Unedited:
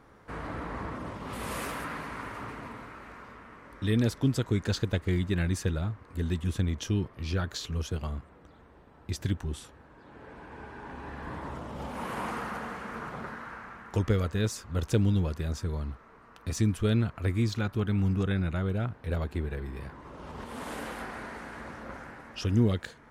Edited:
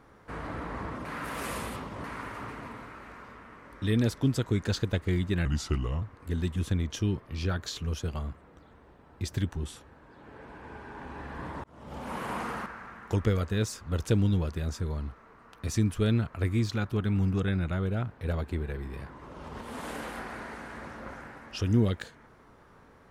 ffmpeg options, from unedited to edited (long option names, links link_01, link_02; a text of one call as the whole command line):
ffmpeg -i in.wav -filter_complex "[0:a]asplit=7[link_01][link_02][link_03][link_04][link_05][link_06][link_07];[link_01]atrim=end=1.052[link_08];[link_02]atrim=start=1.048:end=2.042,asetpts=PTS-STARTPTS,areverse[link_09];[link_03]atrim=start=2.038:end=5.454[link_10];[link_04]atrim=start=5.45:end=5.9,asetpts=PTS-STARTPTS,asetrate=34839,aresample=44100,atrim=end_sample=25120,asetpts=PTS-STARTPTS[link_11];[link_05]atrim=start=5.896:end=11.52,asetpts=PTS-STARTPTS,afade=type=out:start_time=5.62:duration=0.004:curve=hsin[link_12];[link_06]atrim=start=11.52:end=12.542,asetpts=PTS-STARTPTS,afade=type=in:duration=0.43[link_13];[link_07]atrim=start=13.488[link_14];[link_08][link_09]acrossfade=duration=0.004:curve1=hsin:curve2=hsin[link_15];[link_15][link_10]acrossfade=duration=0.004:curve1=hsin:curve2=hsin[link_16];[link_16][link_11]acrossfade=duration=0.004:curve1=hsin:curve2=hsin[link_17];[link_12][link_13]concat=n=2:v=0:a=1[link_18];[link_17][link_18]acrossfade=duration=0.004:curve1=hsin:curve2=hsin[link_19];[link_19][link_14]acrossfade=duration=0.004:curve1=hsin:curve2=hsin" out.wav